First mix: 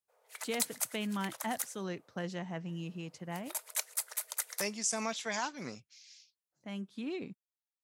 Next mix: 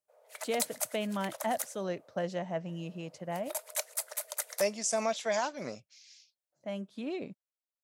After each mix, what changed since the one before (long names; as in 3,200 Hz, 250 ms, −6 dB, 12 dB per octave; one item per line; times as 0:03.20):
master: add parametric band 600 Hz +13.5 dB 0.53 octaves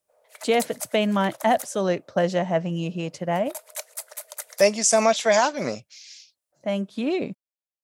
speech +12.0 dB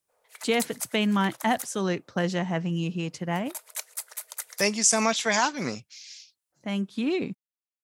master: add parametric band 600 Hz −13.5 dB 0.53 octaves